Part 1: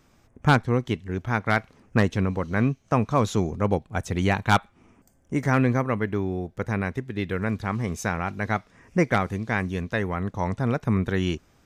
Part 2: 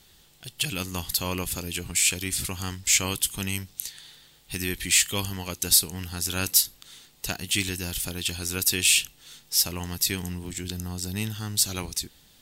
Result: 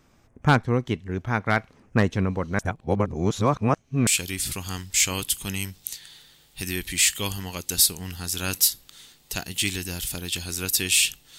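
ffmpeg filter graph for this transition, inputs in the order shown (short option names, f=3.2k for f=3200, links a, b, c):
-filter_complex "[0:a]apad=whole_dur=11.38,atrim=end=11.38,asplit=2[a][b];[a]atrim=end=2.592[c];[b]atrim=start=2.588:end=4.072,asetpts=PTS-STARTPTS,areverse[d];[1:a]atrim=start=1.998:end=9.31[e];[c][d]acrossfade=d=0.004:c1=hsin:c2=hsin[f];[f][e]acrossfade=d=0.004:c1=hsin:c2=hsin"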